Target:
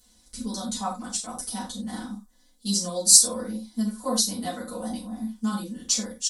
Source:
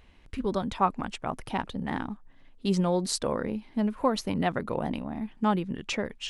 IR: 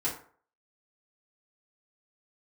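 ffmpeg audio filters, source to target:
-filter_complex "[0:a]aecho=1:1:4:0.93,aexciter=amount=15.3:drive=8:freq=4200[link_01];[1:a]atrim=start_sample=2205,atrim=end_sample=3528,asetrate=32193,aresample=44100[link_02];[link_01][link_02]afir=irnorm=-1:irlink=0,volume=-17dB"

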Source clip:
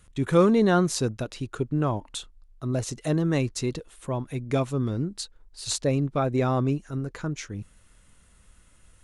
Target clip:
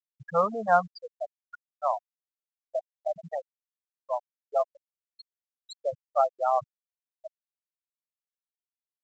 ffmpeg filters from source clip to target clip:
ffmpeg -i in.wav -af "lowshelf=frequency=500:width_type=q:width=3:gain=-12,afftfilt=real='re*gte(hypot(re,im),0.158)':imag='im*gte(hypot(re,im),0.158)':win_size=1024:overlap=0.75" -ar 16000 -c:a pcm_mulaw out.wav

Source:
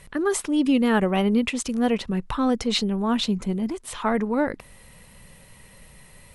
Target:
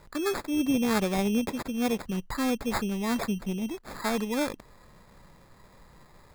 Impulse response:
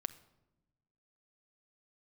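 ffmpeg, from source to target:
-af "acrusher=samples=15:mix=1:aa=0.000001,volume=-5.5dB"

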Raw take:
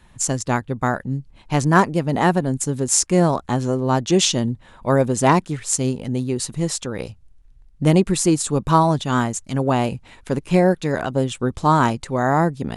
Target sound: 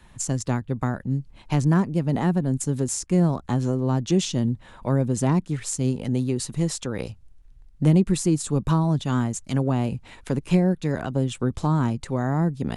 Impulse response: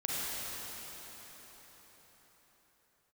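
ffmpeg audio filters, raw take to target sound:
-filter_complex "[0:a]acrossover=split=280[link_01][link_02];[link_02]acompressor=threshold=-28dB:ratio=5[link_03];[link_01][link_03]amix=inputs=2:normalize=0"

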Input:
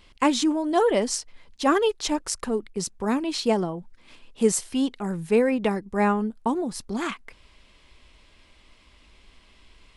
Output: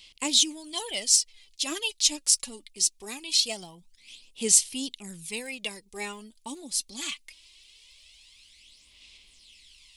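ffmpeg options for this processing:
ffmpeg -i in.wav -af "aphaser=in_gain=1:out_gain=1:delay=3.6:decay=0.54:speed=0.22:type=sinusoidal,aexciter=amount=14.3:drive=4.1:freq=2300,volume=-17.5dB" out.wav

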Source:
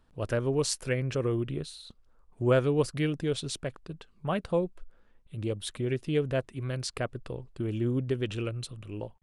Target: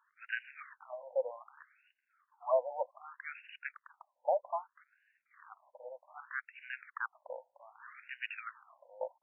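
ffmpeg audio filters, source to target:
ffmpeg -i in.wav -af "acrusher=bits=5:mode=log:mix=0:aa=0.000001,afftfilt=real='re*between(b*sr/1024,670*pow(2100/670,0.5+0.5*sin(2*PI*0.64*pts/sr))/1.41,670*pow(2100/670,0.5+0.5*sin(2*PI*0.64*pts/sr))*1.41)':imag='im*between(b*sr/1024,670*pow(2100/670,0.5+0.5*sin(2*PI*0.64*pts/sr))/1.41,670*pow(2100/670,0.5+0.5*sin(2*PI*0.64*pts/sr))*1.41)':win_size=1024:overlap=0.75,volume=3.5dB" out.wav

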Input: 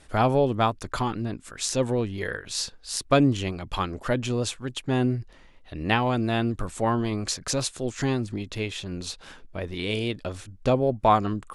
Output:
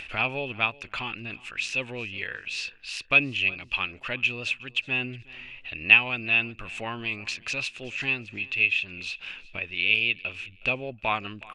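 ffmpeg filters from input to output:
ffmpeg -i in.wav -filter_complex "[0:a]crystalizer=i=7.5:c=0,lowpass=frequency=2600:width_type=q:width=14,acompressor=mode=upward:threshold=-17dB:ratio=2.5,asplit=2[link_01][link_02];[link_02]aecho=0:1:367|734:0.0794|0.0214[link_03];[link_01][link_03]amix=inputs=2:normalize=0,volume=-13.5dB" out.wav

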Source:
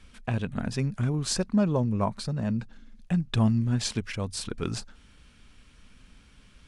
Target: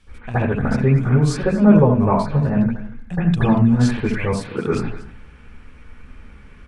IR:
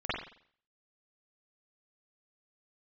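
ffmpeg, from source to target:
-filter_complex "[0:a]asettb=1/sr,asplit=3[link_01][link_02][link_03];[link_01]atrim=end=4.264[link_04];[link_02]atrim=start=4.26:end=4.66,asetpts=PTS-STARTPTS,afade=type=in:duration=0.004:curve=qsin,afade=type=out:start_time=0.396:duration=0.004:curve=qsin,highpass=frequency=130:width=0.5412,highpass=frequency=130:width=1.3066[link_05];[link_03]atrim=start=4.656[link_06];[link_04][link_05]acrossfade=duration=0.004:curve1=hsin:curve2=qsin[link_07];[link_07][link_06]acrossfade=duration=0.004:curve1=qsin:curve2=hsin,aecho=1:1:235:0.133[link_08];[1:a]atrim=start_sample=2205,afade=type=out:start_time=0.18:duration=0.01,atrim=end_sample=8379,asetrate=29106,aresample=44100[link_09];[link_08][link_09]afir=irnorm=-1:irlink=0,volume=1dB"

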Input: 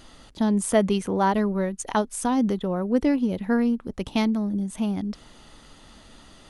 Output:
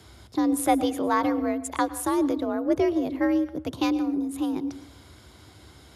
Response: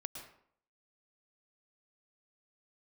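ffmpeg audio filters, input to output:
-filter_complex "[0:a]asetrate=48069,aresample=44100,aeval=exprs='0.422*(cos(1*acos(clip(val(0)/0.422,-1,1)))-cos(1*PI/2))+0.0237*(cos(2*acos(clip(val(0)/0.422,-1,1)))-cos(2*PI/2))+0.00473*(cos(7*acos(clip(val(0)/0.422,-1,1)))-cos(7*PI/2))':channel_layout=same,afreqshift=57,asplit=2[link_01][link_02];[1:a]atrim=start_sample=2205,lowshelf=frequency=390:gain=6,highshelf=frequency=9600:gain=11.5[link_03];[link_02][link_03]afir=irnorm=-1:irlink=0,volume=-7dB[link_04];[link_01][link_04]amix=inputs=2:normalize=0,volume=-4dB"

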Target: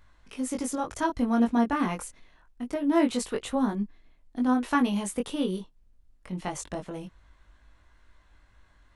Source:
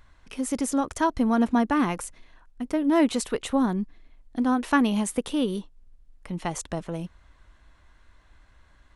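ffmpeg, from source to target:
ffmpeg -i in.wav -af "flanger=delay=19.5:depth=2.2:speed=0.25" out.wav

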